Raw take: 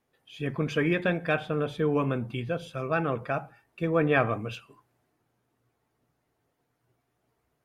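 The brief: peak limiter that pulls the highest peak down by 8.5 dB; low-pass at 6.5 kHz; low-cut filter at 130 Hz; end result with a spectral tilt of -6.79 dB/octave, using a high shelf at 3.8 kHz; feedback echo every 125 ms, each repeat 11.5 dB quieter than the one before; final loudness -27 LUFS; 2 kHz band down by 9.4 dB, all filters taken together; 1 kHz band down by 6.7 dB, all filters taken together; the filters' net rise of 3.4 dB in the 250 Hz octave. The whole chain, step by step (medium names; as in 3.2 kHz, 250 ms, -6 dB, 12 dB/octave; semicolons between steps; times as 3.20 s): high-pass 130 Hz; low-pass 6.5 kHz; peaking EQ 250 Hz +6 dB; peaking EQ 1 kHz -7 dB; peaking EQ 2 kHz -9 dB; treble shelf 3.8 kHz -5 dB; peak limiter -22 dBFS; feedback delay 125 ms, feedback 27%, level -11.5 dB; trim +5 dB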